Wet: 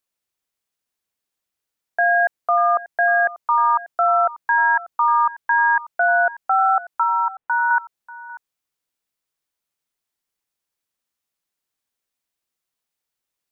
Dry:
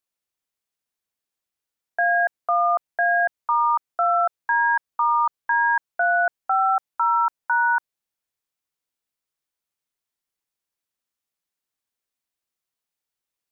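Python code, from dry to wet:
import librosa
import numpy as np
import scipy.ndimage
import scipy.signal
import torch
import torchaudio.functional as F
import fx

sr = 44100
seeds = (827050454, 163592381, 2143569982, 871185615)

p1 = fx.air_absorb(x, sr, metres=450.0, at=(7.03, 7.71))
p2 = p1 + fx.echo_single(p1, sr, ms=589, db=-18.0, dry=0)
y = p2 * librosa.db_to_amplitude(3.0)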